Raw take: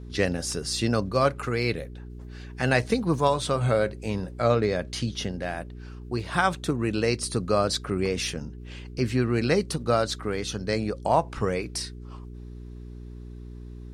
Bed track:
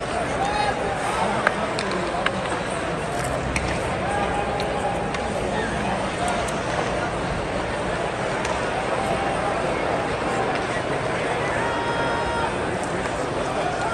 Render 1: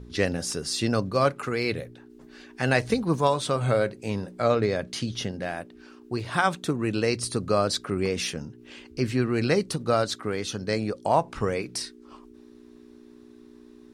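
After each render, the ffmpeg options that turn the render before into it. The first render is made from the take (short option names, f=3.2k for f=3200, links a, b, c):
-af "bandreject=f=60:t=h:w=4,bandreject=f=120:t=h:w=4,bandreject=f=180:t=h:w=4"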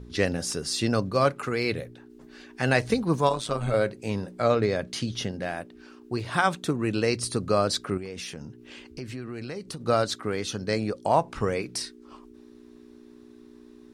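-filter_complex "[0:a]asettb=1/sr,asplit=3[a][b][c];[a]atrim=end=3.294[d];[b]atrim=start=3.29:end=3.74,asetpts=PTS-STARTPTS,afade=t=in:d=0.004:c=qsin,afade=t=out:st=0.446:d=0.004:c=qsin,tremolo=f=110:d=0.667[e];[c]atrim=start=3.736[f];[d][e]acrossfade=d=0.004:c1=hsin:c2=qsin[g];[g][f]acrossfade=d=0.004:c1=qsin:c2=hsin,asettb=1/sr,asplit=3[h][i][j];[h]atrim=end=7.974[k];[i]atrim=start=7.97:end=9.86,asetpts=PTS-STARTPTS,afade=t=in:d=0.004:c=qsin,afade=t=out:st=1.886:d=0.004:c=qsin,acompressor=threshold=-34dB:ratio=4:attack=3.2:release=140:knee=1:detection=peak[l];[j]atrim=start=9.856[m];[k][l]acrossfade=d=0.004:c1=hsin:c2=qsin[n];[n][m]acrossfade=d=0.004:c1=qsin:c2=hsin"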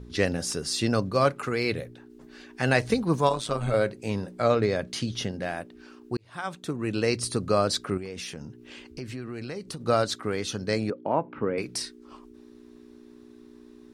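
-filter_complex "[0:a]asettb=1/sr,asplit=3[a][b][c];[a]atrim=end=10.904[d];[b]atrim=start=10.9:end=11.58,asetpts=PTS-STARTPTS,afade=t=in:d=0.004:c=qsin,afade=t=out:st=0.676:d=0.004:c=qsin,highpass=170,equalizer=f=280:t=q:w=4:g=5,equalizer=f=730:t=q:w=4:g=-8,equalizer=f=1.1k:t=q:w=4:g=-5,equalizer=f=1.8k:t=q:w=4:g=-6,lowpass=f=2.2k:w=0.5412,lowpass=f=2.2k:w=1.3066[e];[c]atrim=start=11.576[f];[d][e]acrossfade=d=0.004:c1=hsin:c2=qsin[g];[g][f]acrossfade=d=0.004:c1=qsin:c2=hsin,asplit=2[h][i];[h]atrim=end=6.17,asetpts=PTS-STARTPTS,afade=t=out:st=6.166:d=0.004:c=hsin[j];[i]atrim=start=6.17,asetpts=PTS-STARTPTS,afade=t=in:d=0.93[k];[j][k]concat=n=2:v=0:a=1"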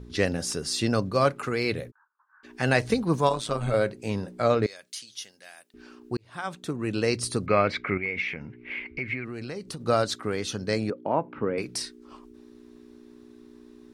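-filter_complex "[0:a]asplit=3[a][b][c];[a]afade=t=out:st=1.9:d=0.02[d];[b]asuperpass=centerf=1200:order=8:qfactor=1.9,afade=t=in:st=1.9:d=0.02,afade=t=out:st=2.43:d=0.02[e];[c]afade=t=in:st=2.43:d=0.02[f];[d][e][f]amix=inputs=3:normalize=0,asettb=1/sr,asplit=3[g][h][i];[g]atrim=end=4.664[j];[h]atrim=start=4.66:end=5.74,asetpts=PTS-STARTPTS,afade=t=in:d=0.004:c=qsin,afade=t=out:st=1.076:d=0.004:c=qsin,aderivative[k];[i]atrim=start=5.736[l];[j][k]acrossfade=d=0.004:c1=hsin:c2=qsin[m];[m][l]acrossfade=d=0.004:c1=qsin:c2=hsin,asettb=1/sr,asplit=3[n][o][p];[n]atrim=end=7.464[q];[o]atrim=start=7.46:end=9.25,asetpts=PTS-STARTPTS,afade=t=in:d=0.004:c=qsin,afade=t=out:st=1.786:d=0.004:c=qsin,lowpass=f=2.2k:t=q:w=16[r];[p]atrim=start=9.246[s];[q][r]acrossfade=d=0.004:c1=hsin:c2=qsin[t];[t][s]acrossfade=d=0.004:c1=qsin:c2=hsin"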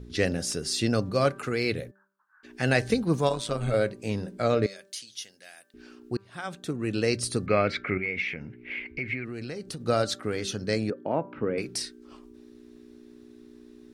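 -af "equalizer=f=1k:w=2.2:g=-7,bandreject=f=195.4:t=h:w=4,bandreject=f=390.8:t=h:w=4,bandreject=f=586.2:t=h:w=4,bandreject=f=781.6:t=h:w=4,bandreject=f=977:t=h:w=4,bandreject=f=1.1724k:t=h:w=4,bandreject=f=1.3678k:t=h:w=4,bandreject=f=1.5632k:t=h:w=4,bandreject=f=1.7586k:t=h:w=4"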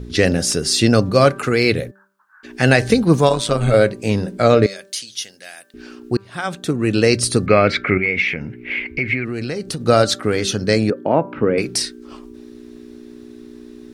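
-af "alimiter=level_in=11.5dB:limit=-1dB:release=50:level=0:latency=1"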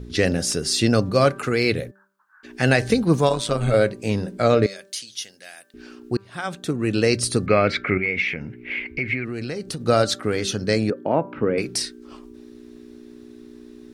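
-af "volume=-4.5dB"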